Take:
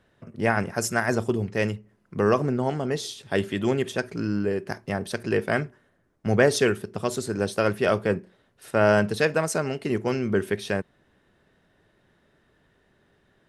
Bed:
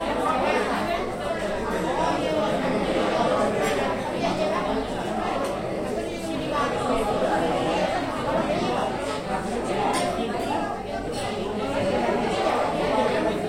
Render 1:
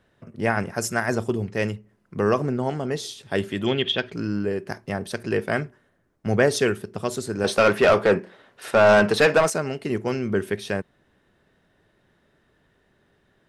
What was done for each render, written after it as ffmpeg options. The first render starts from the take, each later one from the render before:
-filter_complex "[0:a]asettb=1/sr,asplit=3[a][b][c];[a]atrim=end=3.664[d];[b]atrim=start=3.66:end=4.12,asetpts=PTS-STARTPTS,afade=t=in:d=0.004:c=qsin,afade=t=out:st=0.456:d=0.004:c=qsin,lowpass=f=3.3k:t=q:w=7.9[e];[c]atrim=start=4.116[f];[d][e]acrossfade=d=0.004:c1=hsin:c2=qsin[g];[g][f]acrossfade=d=0.004:c1=qsin:c2=hsin,asettb=1/sr,asplit=3[h][i][j];[h]atrim=end=7.444[k];[i]atrim=start=7.44:end=9.5,asetpts=PTS-STARTPTS,afade=t=in:d=0.004:c=qsin,afade=t=out:st=2.056:d=0.004:c=qsin,asplit=2[l][m];[m]highpass=f=720:p=1,volume=21dB,asoftclip=type=tanh:threshold=-6.5dB[n];[l][n]amix=inputs=2:normalize=0,lowpass=f=2.6k:p=1,volume=-6dB[o];[j]atrim=start=9.496[p];[k][o]acrossfade=d=0.004:c1=hsin:c2=qsin[q];[q][p]acrossfade=d=0.004:c1=qsin:c2=hsin"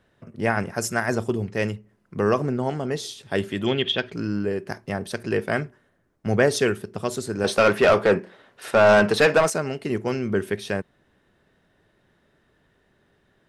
-af anull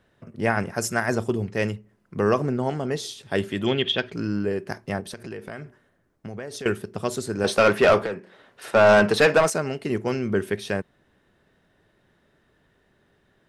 -filter_complex "[0:a]asettb=1/sr,asplit=3[a][b][c];[a]atrim=end=5.004[d];[b]atrim=start=5:end=6.66,asetpts=PTS-STARTPTS,afade=t=in:d=0.004:c=qsin,afade=t=out:st=1.656:d=0.004:c=qsin,acompressor=threshold=-33dB:ratio=5:attack=3.2:release=140:knee=1:detection=peak[e];[c]atrim=start=6.656[f];[d][e]acrossfade=d=0.004:c1=hsin:c2=qsin[g];[g][f]acrossfade=d=0.004:c1=qsin:c2=hsin,asettb=1/sr,asplit=3[h][i][j];[h]atrim=end=8.024[k];[i]atrim=start=8.02:end=8.75,asetpts=PTS-STARTPTS,afade=t=in:d=0.004:c=qsin,afade=t=out:st=0.726:d=0.004:c=qsin,acrossover=split=190|1300[l][m][n];[l]acompressor=threshold=-44dB:ratio=4[o];[m]acompressor=threshold=-30dB:ratio=4[p];[n]acompressor=threshold=-39dB:ratio=4[q];[o][p][q]amix=inputs=3:normalize=0[r];[j]atrim=start=8.746[s];[k][r]acrossfade=d=0.004:c1=hsin:c2=qsin[t];[t][s]acrossfade=d=0.004:c1=qsin:c2=hsin"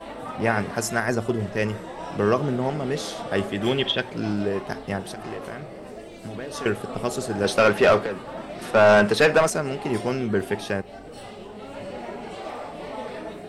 -filter_complex "[1:a]volume=-11.5dB[a];[0:a][a]amix=inputs=2:normalize=0"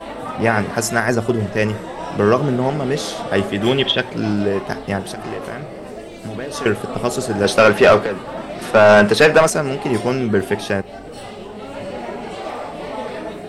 -af "volume=6.5dB,alimiter=limit=-2dB:level=0:latency=1"

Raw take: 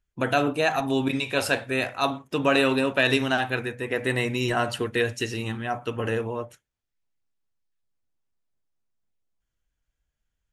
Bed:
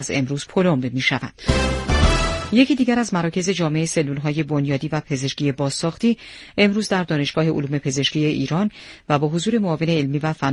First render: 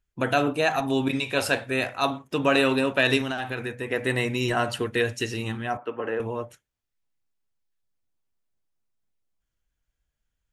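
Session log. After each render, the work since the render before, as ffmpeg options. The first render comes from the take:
-filter_complex "[0:a]asettb=1/sr,asplit=3[a][b][c];[a]atrim=end=3.214[d];[b]atrim=start=3.21:end=3.88,asetpts=PTS-STARTPTS,afade=t=in:d=0.004:c=qsin,afade=t=out:st=0.666:d=0.004:c=qsin,acompressor=threshold=-25dB:ratio=6:attack=3.2:release=140:knee=1:detection=peak[e];[c]atrim=start=3.876[f];[d][e]acrossfade=d=0.004:c1=hsin:c2=qsin[g];[g][f]acrossfade=d=0.004:c1=qsin:c2=hsin,asettb=1/sr,asplit=3[h][i][j];[h]atrim=end=5.774[k];[i]atrim=start=5.77:end=6.2,asetpts=PTS-STARTPTS,afade=t=in:d=0.004:c=qsin,afade=t=out:st=0.426:d=0.004:c=qsin,acrossover=split=250 2400:gain=0.1 1 0.0794[l][m][n];[l][m][n]amix=inputs=3:normalize=0[o];[j]atrim=start=6.196[p];[k][o]acrossfade=d=0.004:c1=hsin:c2=qsin[q];[q][p]acrossfade=d=0.004:c1=qsin:c2=hsin"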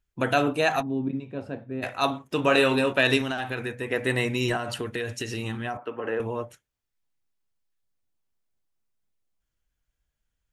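-filter_complex "[0:a]asplit=3[a][b][c];[a]afade=t=out:st=0.81:d=0.02[d];[b]bandpass=f=190:t=q:w=1.2,afade=t=in:st=0.81:d=0.02,afade=t=out:st=1.82:d=0.02[e];[c]afade=t=in:st=1.82:d=0.02[f];[d][e][f]amix=inputs=3:normalize=0,asettb=1/sr,asplit=3[g][h][i];[g]atrim=end=2.364[j];[h]atrim=start=2.36:end=2.93,asetpts=PTS-STARTPTS,afade=t=in:d=0.004:c=qsin,afade=t=out:st=0.566:d=0.004:c=qsin,asplit=2[k][l];[l]adelay=24,volume=-8dB[m];[k][m]amix=inputs=2:normalize=0,atrim=end_sample=25137[n];[i]atrim=start=2.926[o];[j][n]acrossfade=d=0.004:c1=hsin:c2=qsin[p];[p][o]acrossfade=d=0.004:c1=qsin:c2=hsin,asettb=1/sr,asplit=3[q][r][s];[q]atrim=end=4.564[t];[r]atrim=start=4.56:end=6.07,asetpts=PTS-STARTPTS,afade=t=in:d=0.004:c=qsin,afade=t=out:st=1.506:d=0.004:c=qsin,acompressor=threshold=-26dB:ratio=6:attack=3.2:release=140:knee=1:detection=peak[u];[s]atrim=start=6.066[v];[t][u]acrossfade=d=0.004:c1=hsin:c2=qsin[w];[w][v]acrossfade=d=0.004:c1=qsin:c2=hsin"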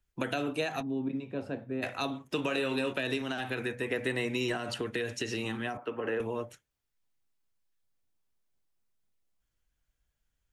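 -filter_complex "[0:a]alimiter=limit=-13.5dB:level=0:latency=1:release=345,acrossover=split=190|500|1700|7900[a][b][c][d][e];[a]acompressor=threshold=-47dB:ratio=4[f];[b]acompressor=threshold=-32dB:ratio=4[g];[c]acompressor=threshold=-41dB:ratio=4[h];[d]acompressor=threshold=-35dB:ratio=4[i];[e]acompressor=threshold=-60dB:ratio=4[j];[f][g][h][i][j]amix=inputs=5:normalize=0"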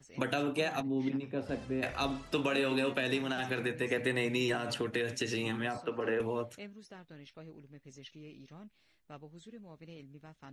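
-filter_complex "[1:a]volume=-31.5dB[a];[0:a][a]amix=inputs=2:normalize=0"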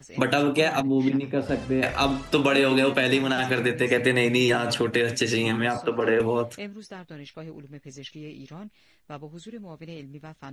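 -af "volume=10.5dB"

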